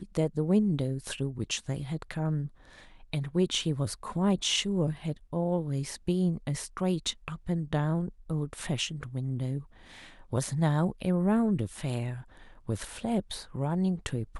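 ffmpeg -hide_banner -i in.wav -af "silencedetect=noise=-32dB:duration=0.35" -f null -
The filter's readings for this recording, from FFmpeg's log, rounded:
silence_start: 2.46
silence_end: 3.13 | silence_duration: 0.67
silence_start: 9.59
silence_end: 10.33 | silence_duration: 0.74
silence_start: 12.14
silence_end: 12.69 | silence_duration: 0.55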